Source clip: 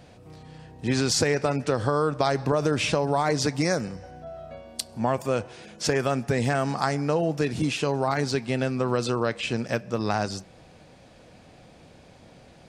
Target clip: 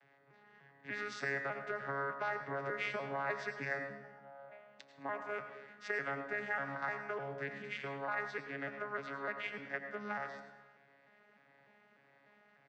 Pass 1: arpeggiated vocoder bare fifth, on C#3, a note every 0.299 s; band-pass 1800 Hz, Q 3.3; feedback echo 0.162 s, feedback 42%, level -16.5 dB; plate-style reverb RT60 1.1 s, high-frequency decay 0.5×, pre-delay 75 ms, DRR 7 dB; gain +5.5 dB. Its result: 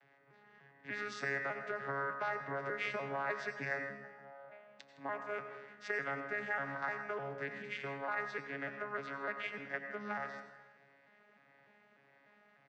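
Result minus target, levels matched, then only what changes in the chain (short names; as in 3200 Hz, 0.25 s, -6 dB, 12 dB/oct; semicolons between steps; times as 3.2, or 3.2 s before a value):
echo 54 ms late
change: feedback echo 0.108 s, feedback 42%, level -16.5 dB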